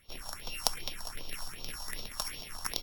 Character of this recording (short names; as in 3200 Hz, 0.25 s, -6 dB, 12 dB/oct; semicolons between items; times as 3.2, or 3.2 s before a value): a buzz of ramps at a fixed pitch in blocks of 8 samples; phasing stages 4, 2.6 Hz, lowest notch 350–1800 Hz; Opus